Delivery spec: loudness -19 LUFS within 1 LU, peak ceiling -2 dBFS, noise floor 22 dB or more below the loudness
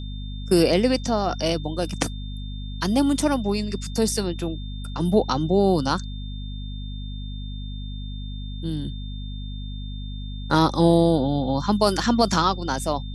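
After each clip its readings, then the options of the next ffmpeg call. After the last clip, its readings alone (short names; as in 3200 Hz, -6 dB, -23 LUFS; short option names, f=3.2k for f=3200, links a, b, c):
hum 50 Hz; harmonics up to 250 Hz; hum level -30 dBFS; steady tone 3600 Hz; tone level -43 dBFS; loudness -22.5 LUFS; peak -4.5 dBFS; loudness target -19.0 LUFS
-> -af "bandreject=f=50:t=h:w=6,bandreject=f=100:t=h:w=6,bandreject=f=150:t=h:w=6,bandreject=f=200:t=h:w=6,bandreject=f=250:t=h:w=6"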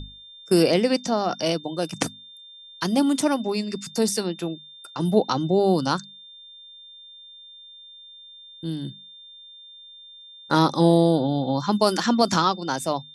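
hum none; steady tone 3600 Hz; tone level -43 dBFS
-> -af "bandreject=f=3.6k:w=30"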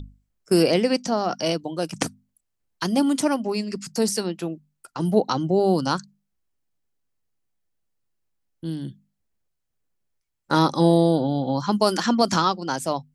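steady tone none; loudness -23.0 LUFS; peak -4.5 dBFS; loudness target -19.0 LUFS
-> -af "volume=4dB,alimiter=limit=-2dB:level=0:latency=1"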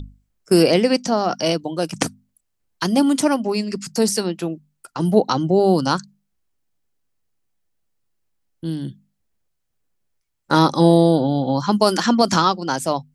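loudness -19.0 LUFS; peak -2.0 dBFS; noise floor -73 dBFS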